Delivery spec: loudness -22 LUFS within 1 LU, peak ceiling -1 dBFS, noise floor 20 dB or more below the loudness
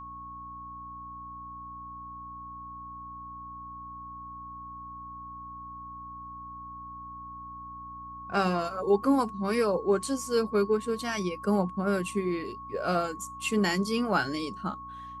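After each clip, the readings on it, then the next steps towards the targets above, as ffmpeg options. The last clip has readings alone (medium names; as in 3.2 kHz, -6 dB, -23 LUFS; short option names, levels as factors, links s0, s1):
hum 60 Hz; highest harmonic 300 Hz; hum level -48 dBFS; steady tone 1.1 kHz; tone level -40 dBFS; loudness -28.5 LUFS; peak level -12.5 dBFS; loudness target -22.0 LUFS
-> -af "bandreject=f=60:t=h:w=4,bandreject=f=120:t=h:w=4,bandreject=f=180:t=h:w=4,bandreject=f=240:t=h:w=4,bandreject=f=300:t=h:w=4"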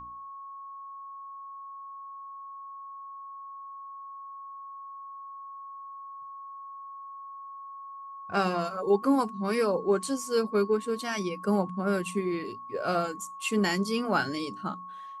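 hum not found; steady tone 1.1 kHz; tone level -40 dBFS
-> -af "bandreject=f=1100:w=30"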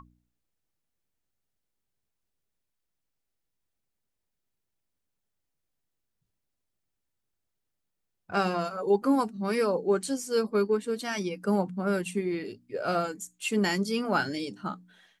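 steady tone not found; loudness -29.0 LUFS; peak level -12.5 dBFS; loudness target -22.0 LUFS
-> -af "volume=2.24"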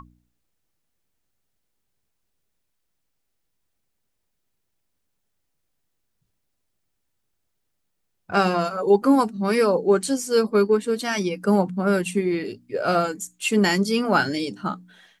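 loudness -22.0 LUFS; peak level -5.5 dBFS; noise floor -75 dBFS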